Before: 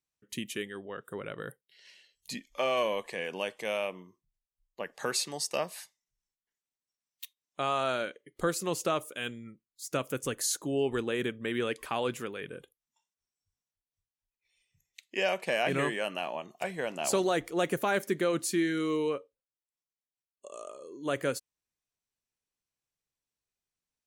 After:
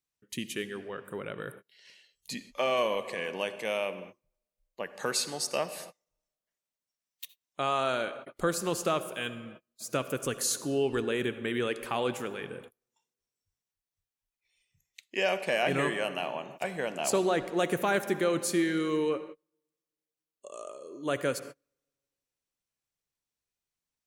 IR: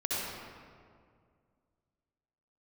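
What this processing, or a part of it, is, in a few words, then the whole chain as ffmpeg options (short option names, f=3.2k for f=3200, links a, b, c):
keyed gated reverb: -filter_complex "[0:a]asettb=1/sr,asplit=3[a][b][c];[a]atrim=end=17.104[d];[b]atrim=start=17.1:end=17.54,asetpts=PTS-STARTPTS,afade=t=in:d=0.004:c=qsin,afade=t=out:st=0.436:d=0.004:c=qsin,highshelf=f=5.3k:g=-9[e];[c]atrim=start=17.536[f];[d][e]acrossfade=d=0.004:c1=hsin:c2=qsin[g];[g][f]acrossfade=d=0.004:c1=qsin:c2=hsin,asplit=3[h][i][j];[1:a]atrim=start_sample=2205[k];[i][k]afir=irnorm=-1:irlink=0[l];[j]apad=whole_len=1061224[m];[l][m]sidechaingate=range=-36dB:threshold=-52dB:ratio=16:detection=peak,volume=-18dB[n];[h][n]amix=inputs=2:normalize=0"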